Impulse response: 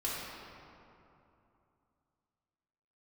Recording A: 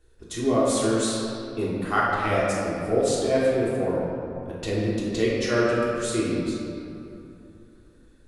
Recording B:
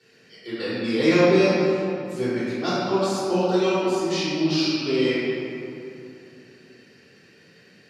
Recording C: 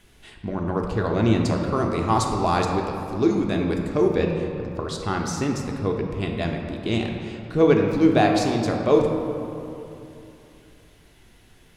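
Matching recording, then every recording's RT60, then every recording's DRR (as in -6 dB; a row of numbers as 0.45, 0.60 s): A; 2.9, 2.9, 2.9 s; -8.0, -17.5, 1.0 dB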